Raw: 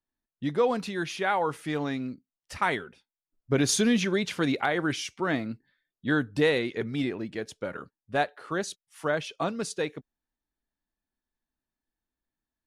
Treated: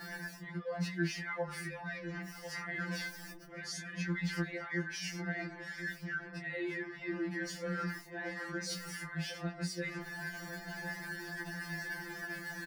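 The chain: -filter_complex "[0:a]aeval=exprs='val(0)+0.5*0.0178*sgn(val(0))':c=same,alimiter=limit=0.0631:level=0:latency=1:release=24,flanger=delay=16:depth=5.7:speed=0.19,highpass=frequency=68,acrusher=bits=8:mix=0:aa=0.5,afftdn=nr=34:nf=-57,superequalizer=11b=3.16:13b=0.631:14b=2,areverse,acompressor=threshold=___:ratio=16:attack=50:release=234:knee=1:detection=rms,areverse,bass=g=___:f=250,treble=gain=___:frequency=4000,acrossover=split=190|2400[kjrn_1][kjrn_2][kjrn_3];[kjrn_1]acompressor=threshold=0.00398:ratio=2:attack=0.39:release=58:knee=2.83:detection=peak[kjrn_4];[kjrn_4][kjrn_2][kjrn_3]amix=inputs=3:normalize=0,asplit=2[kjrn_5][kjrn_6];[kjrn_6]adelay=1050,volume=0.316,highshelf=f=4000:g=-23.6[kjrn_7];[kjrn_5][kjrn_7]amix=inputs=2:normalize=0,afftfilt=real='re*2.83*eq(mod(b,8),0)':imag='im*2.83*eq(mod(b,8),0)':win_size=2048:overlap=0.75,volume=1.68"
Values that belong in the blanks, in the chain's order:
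0.01, 8, -4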